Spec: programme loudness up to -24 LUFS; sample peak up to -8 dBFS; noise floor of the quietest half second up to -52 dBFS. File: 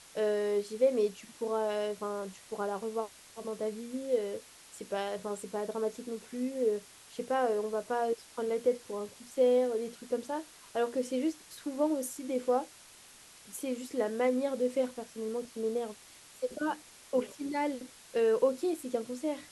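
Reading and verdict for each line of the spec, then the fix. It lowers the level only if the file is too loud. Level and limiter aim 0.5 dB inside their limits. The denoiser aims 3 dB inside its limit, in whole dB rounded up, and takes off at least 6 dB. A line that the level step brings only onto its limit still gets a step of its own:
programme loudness -33.5 LUFS: pass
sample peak -16.0 dBFS: pass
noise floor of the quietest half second -55 dBFS: pass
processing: none needed

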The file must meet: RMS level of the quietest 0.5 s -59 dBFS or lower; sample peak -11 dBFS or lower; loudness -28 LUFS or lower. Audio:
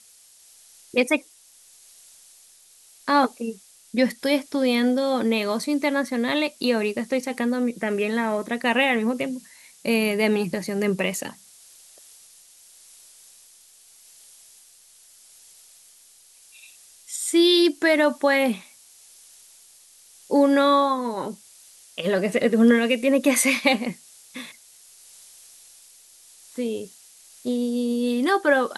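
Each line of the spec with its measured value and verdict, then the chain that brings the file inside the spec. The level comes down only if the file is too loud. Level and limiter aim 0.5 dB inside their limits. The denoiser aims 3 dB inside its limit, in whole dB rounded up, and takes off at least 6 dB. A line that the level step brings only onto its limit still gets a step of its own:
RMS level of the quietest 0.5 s -53 dBFS: fail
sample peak -6.0 dBFS: fail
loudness -22.5 LUFS: fail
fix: noise reduction 6 dB, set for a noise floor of -53 dBFS; trim -6 dB

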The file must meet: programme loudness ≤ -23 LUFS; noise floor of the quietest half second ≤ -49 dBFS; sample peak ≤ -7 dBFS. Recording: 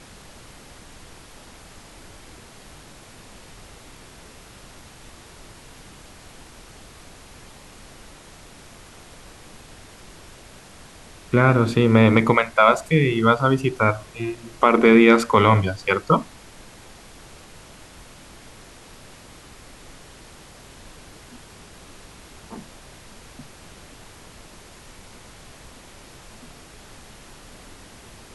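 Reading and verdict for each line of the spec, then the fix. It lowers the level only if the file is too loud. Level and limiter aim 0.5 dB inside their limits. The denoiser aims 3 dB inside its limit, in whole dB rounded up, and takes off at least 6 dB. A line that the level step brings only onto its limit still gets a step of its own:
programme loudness -18.0 LUFS: fail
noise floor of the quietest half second -45 dBFS: fail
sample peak -2.0 dBFS: fail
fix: trim -5.5 dB

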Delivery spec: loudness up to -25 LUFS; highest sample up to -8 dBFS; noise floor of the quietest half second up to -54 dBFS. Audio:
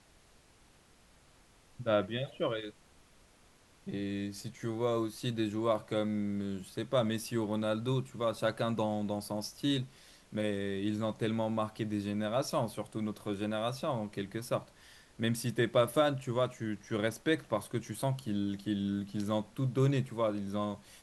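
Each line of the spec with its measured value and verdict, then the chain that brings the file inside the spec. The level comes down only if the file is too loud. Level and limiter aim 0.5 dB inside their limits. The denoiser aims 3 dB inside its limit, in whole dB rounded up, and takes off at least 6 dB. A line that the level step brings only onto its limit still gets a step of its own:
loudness -34.0 LUFS: pass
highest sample -15.5 dBFS: pass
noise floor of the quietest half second -63 dBFS: pass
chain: none needed

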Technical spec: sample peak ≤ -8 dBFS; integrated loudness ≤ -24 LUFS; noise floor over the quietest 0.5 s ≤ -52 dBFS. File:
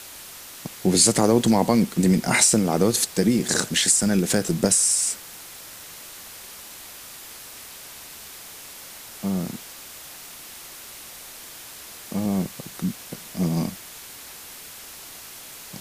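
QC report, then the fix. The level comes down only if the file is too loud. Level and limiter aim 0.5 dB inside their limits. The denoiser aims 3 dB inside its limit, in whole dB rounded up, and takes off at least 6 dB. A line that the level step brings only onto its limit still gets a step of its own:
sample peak -3.5 dBFS: fail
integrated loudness -21.0 LUFS: fail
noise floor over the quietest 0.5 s -41 dBFS: fail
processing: noise reduction 11 dB, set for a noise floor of -41 dBFS; trim -3.5 dB; peak limiter -8.5 dBFS

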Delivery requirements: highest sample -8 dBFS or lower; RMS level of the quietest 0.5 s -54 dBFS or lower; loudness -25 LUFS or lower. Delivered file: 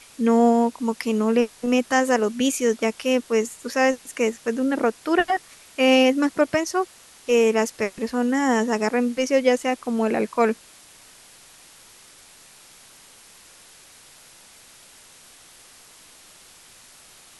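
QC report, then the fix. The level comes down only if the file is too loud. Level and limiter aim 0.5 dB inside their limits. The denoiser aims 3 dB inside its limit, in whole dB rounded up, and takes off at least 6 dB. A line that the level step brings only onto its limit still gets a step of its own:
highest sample -6.0 dBFS: fail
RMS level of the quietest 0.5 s -49 dBFS: fail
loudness -21.5 LUFS: fail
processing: noise reduction 6 dB, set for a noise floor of -49 dBFS; trim -4 dB

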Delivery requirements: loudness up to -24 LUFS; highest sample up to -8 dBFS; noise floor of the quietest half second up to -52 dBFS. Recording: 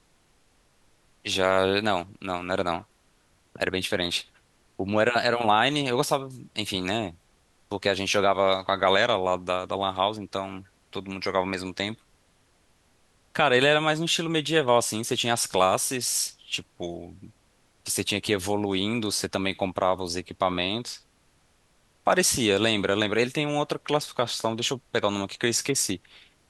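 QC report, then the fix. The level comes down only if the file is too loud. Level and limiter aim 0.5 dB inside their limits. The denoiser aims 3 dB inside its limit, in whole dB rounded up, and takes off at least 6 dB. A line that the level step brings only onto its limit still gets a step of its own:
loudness -25.5 LUFS: pass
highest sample -6.0 dBFS: fail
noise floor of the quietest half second -64 dBFS: pass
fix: peak limiter -8.5 dBFS

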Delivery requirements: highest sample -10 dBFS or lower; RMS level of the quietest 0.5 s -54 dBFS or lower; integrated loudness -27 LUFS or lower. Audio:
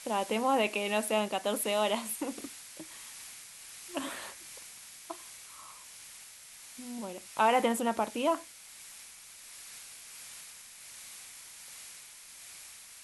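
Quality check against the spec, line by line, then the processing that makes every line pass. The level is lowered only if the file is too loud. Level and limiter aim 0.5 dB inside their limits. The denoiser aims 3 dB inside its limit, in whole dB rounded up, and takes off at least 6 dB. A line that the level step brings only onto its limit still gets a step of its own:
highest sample -15.0 dBFS: pass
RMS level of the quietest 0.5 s -51 dBFS: fail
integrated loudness -32.5 LUFS: pass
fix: noise reduction 6 dB, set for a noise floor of -51 dBFS

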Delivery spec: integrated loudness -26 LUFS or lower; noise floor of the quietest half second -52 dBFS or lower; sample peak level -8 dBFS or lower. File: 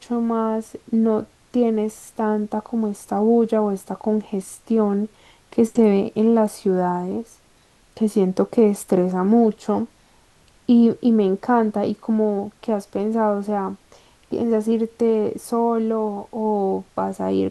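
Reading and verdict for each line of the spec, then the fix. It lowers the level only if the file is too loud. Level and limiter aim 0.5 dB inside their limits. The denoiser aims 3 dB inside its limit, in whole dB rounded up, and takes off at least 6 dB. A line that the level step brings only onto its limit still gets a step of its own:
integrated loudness -21.0 LUFS: fail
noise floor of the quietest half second -56 dBFS: pass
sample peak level -5.5 dBFS: fail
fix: trim -5.5 dB

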